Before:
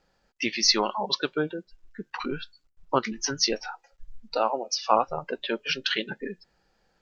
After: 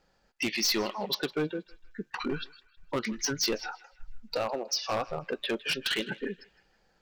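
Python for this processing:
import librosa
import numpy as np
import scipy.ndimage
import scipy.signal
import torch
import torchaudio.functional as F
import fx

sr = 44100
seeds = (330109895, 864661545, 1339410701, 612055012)

p1 = fx.dynamic_eq(x, sr, hz=930.0, q=1.6, threshold_db=-39.0, ratio=4.0, max_db=-8)
p2 = np.clip(p1, -10.0 ** (-24.0 / 20.0), 10.0 ** (-24.0 / 20.0))
y = p2 + fx.echo_banded(p2, sr, ms=159, feedback_pct=41, hz=2100.0, wet_db=-16.5, dry=0)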